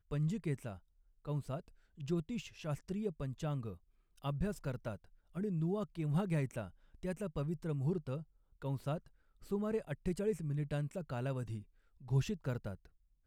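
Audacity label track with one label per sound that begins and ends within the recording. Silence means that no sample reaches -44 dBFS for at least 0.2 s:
1.260000	1.600000	sound
2.000000	3.740000	sound
4.240000	4.960000	sound
5.360000	6.690000	sound
7.030000	8.220000	sound
8.620000	8.980000	sound
9.510000	11.610000	sound
12.080000	12.750000	sound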